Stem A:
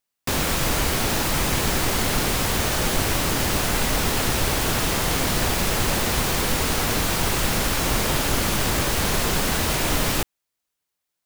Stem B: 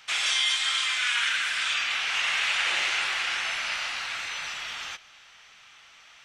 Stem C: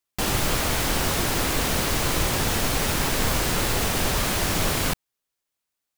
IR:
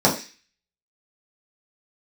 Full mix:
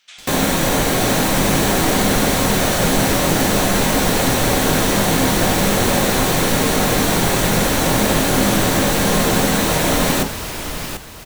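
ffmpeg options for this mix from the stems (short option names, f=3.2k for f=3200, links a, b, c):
-filter_complex "[0:a]volume=2.5dB,asplit=3[a][b][c];[b]volume=-21dB[d];[c]volume=-7dB[e];[1:a]volume=-18.5dB,asplit=2[f][g];[g]volume=-20dB[h];[2:a]volume=-15.5dB[i];[f][i]amix=inputs=2:normalize=0,equalizer=f=5.2k:t=o:w=2.8:g=13.5,acompressor=threshold=-39dB:ratio=5,volume=0dB[j];[3:a]atrim=start_sample=2205[k];[d][h]amix=inputs=2:normalize=0[l];[l][k]afir=irnorm=-1:irlink=0[m];[e]aecho=0:1:741|1482|2223|2964|3705:1|0.33|0.109|0.0359|0.0119[n];[a][j][m][n]amix=inputs=4:normalize=0,bandreject=f=50:t=h:w=6,bandreject=f=100:t=h:w=6"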